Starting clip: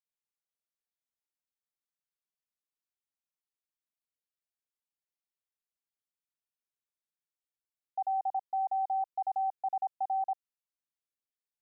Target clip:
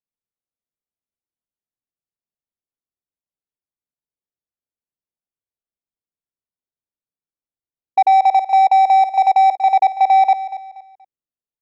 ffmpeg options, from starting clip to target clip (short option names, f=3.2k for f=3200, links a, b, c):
-filter_complex "[0:a]afwtdn=0.00398,asettb=1/sr,asplit=3[a][b][c];[a]atrim=end=8.124[d];[b]atrim=start=8.12:end=9.58,asetpts=PTS-STARTPTS,afade=t=in:d=0.004:c=qsin,afade=t=out:st=1.456:d=0.004:c=qsin,equalizer=f=650:t=o:w=2.5:g=3.5[e];[c]atrim=start=9.576[f];[d][e]acrossfade=d=0.004:c1=hsin:c2=qsin[g];[g][f]acrossfade=d=0.004:c1=qsin:c2=hsin,adynamicsmooth=sensitivity=5:basefreq=720,aecho=1:1:238|476|714:0.158|0.0475|0.0143,alimiter=level_in=29dB:limit=-1dB:release=50:level=0:latency=1,volume=-6.5dB"